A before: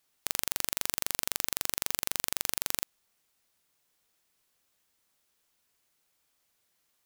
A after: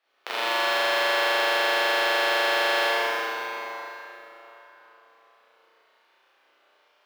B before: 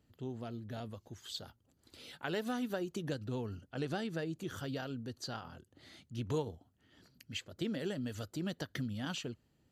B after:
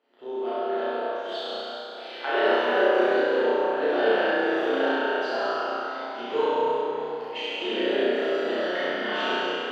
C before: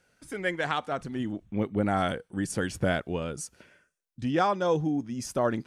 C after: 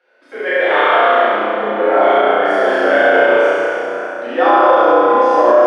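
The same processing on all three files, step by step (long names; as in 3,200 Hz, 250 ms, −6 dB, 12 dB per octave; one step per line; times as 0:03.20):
high-pass filter 420 Hz 24 dB per octave
in parallel at −7 dB: floating-point word with a short mantissa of 2 bits
on the sum: high-frequency loss of the air 350 metres
flutter between parallel walls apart 5.7 metres, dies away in 1.2 s
dense smooth reverb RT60 4.1 s, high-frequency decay 0.65×, DRR −9.5 dB
boost into a limiter +5 dB
level −1 dB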